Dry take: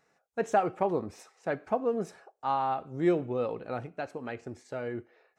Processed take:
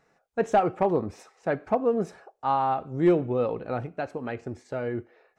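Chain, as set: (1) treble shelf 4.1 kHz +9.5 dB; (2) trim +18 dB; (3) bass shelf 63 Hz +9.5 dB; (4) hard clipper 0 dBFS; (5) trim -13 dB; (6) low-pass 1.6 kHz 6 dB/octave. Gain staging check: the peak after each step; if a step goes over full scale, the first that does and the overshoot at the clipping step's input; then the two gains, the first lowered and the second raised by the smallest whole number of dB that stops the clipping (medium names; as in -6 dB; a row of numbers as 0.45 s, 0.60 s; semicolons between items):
-12.5 dBFS, +5.5 dBFS, +5.5 dBFS, 0.0 dBFS, -13.0 dBFS, -13.0 dBFS; step 2, 5.5 dB; step 2 +12 dB, step 5 -7 dB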